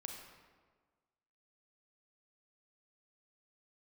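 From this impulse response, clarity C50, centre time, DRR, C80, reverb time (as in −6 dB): 3.0 dB, 53 ms, 1.5 dB, 5.0 dB, 1.5 s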